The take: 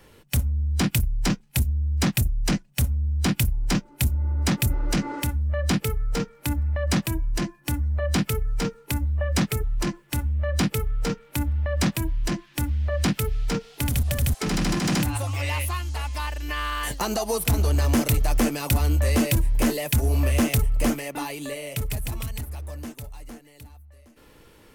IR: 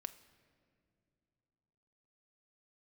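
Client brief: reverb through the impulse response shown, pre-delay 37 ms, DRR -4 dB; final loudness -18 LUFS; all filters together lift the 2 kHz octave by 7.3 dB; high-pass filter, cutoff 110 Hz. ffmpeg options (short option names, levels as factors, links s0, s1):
-filter_complex "[0:a]highpass=110,equalizer=f=2000:t=o:g=9,asplit=2[s0][s1];[1:a]atrim=start_sample=2205,adelay=37[s2];[s1][s2]afir=irnorm=-1:irlink=0,volume=2.37[s3];[s0][s3]amix=inputs=2:normalize=0,volume=1.33"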